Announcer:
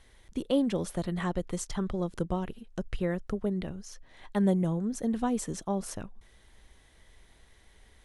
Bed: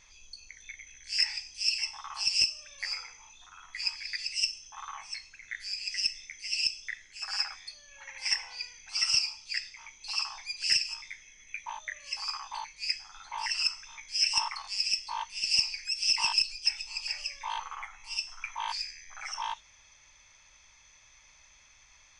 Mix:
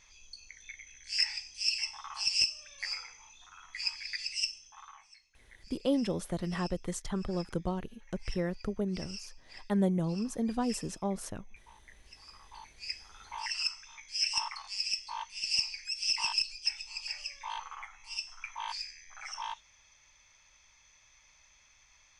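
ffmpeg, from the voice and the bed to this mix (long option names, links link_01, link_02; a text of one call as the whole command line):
ffmpeg -i stem1.wav -i stem2.wav -filter_complex "[0:a]adelay=5350,volume=-2.5dB[link_01];[1:a]volume=13dB,afade=type=out:start_time=4.28:duration=0.86:silence=0.141254,afade=type=in:start_time=12.33:duration=0.94:silence=0.177828[link_02];[link_01][link_02]amix=inputs=2:normalize=0" out.wav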